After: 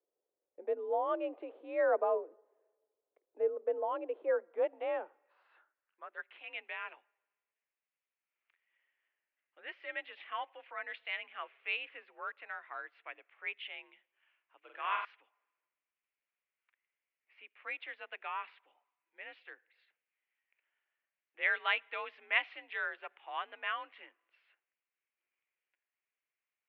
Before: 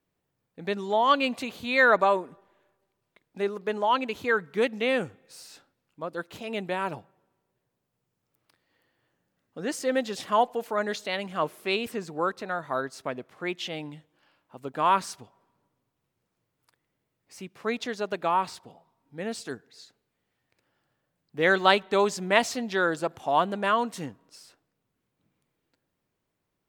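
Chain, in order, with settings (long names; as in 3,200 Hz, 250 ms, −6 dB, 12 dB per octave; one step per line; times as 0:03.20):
0:14.59–0:15.05: flutter between parallel walls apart 7.7 metres, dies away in 0.68 s
single-sideband voice off tune +52 Hz 270–3,100 Hz
band-pass filter sweep 480 Hz → 2,300 Hz, 0:04.14–0:06.44
level −2.5 dB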